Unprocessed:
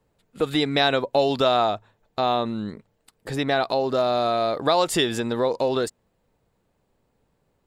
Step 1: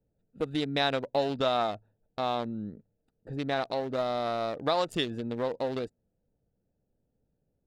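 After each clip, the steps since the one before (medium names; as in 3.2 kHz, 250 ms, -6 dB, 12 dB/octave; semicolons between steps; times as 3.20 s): local Wiener filter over 41 samples; peaking EQ 380 Hz -4.5 dB 0.24 oct; trim -6 dB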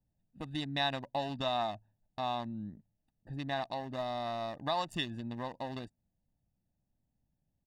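comb 1.1 ms, depth 78%; trim -7 dB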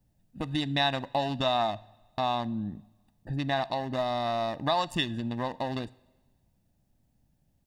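in parallel at +1.5 dB: compression, threshold -43 dBFS, peak gain reduction 15.5 dB; on the sum: reverberation, pre-delay 3 ms, DRR 18 dB; trim +4 dB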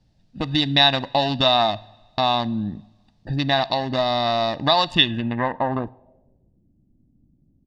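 low-pass sweep 4.6 kHz -> 300 Hz, 4.81–6.71 s; trim +7.5 dB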